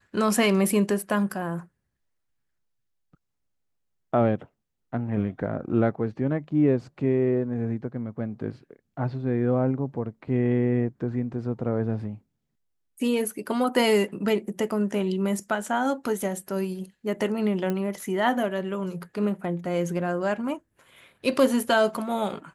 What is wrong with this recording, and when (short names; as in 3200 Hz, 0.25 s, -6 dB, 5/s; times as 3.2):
17.7 pop -16 dBFS